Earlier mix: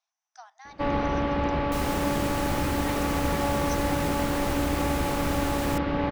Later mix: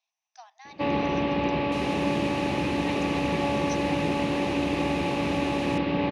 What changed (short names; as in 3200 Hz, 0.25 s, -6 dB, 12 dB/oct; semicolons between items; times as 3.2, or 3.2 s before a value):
second sound -5.0 dB; master: add speaker cabinet 110–9100 Hz, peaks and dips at 180 Hz +5 dB, 360 Hz +5 dB, 1400 Hz -10 dB, 2600 Hz +9 dB, 3900 Hz +4 dB, 7900 Hz -8 dB